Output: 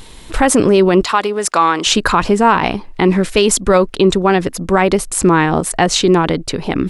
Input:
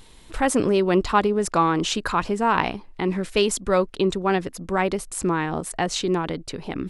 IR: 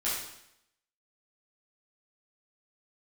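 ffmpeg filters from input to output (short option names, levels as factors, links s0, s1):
-filter_complex "[0:a]asettb=1/sr,asplit=3[s0][s1][s2];[s0]atrim=end=1.034[s3];[s1]atrim=start=1.03:end=1.87,asetpts=PTS-STARTPTS,afade=t=in:d=0.004:c=qsin,afade=t=out:st=0.836:d=0.004:c=qsin,highpass=f=1000:p=1[s4];[s2]atrim=start=1.866[s5];[s3][s4]acrossfade=d=0.004:c1=hsin:c2=qsin[s6];[s6][s5]acrossfade=d=0.004:c1=qsin:c2=hsin,alimiter=level_in=4.47:limit=0.891:release=50:level=0:latency=1,volume=0.891"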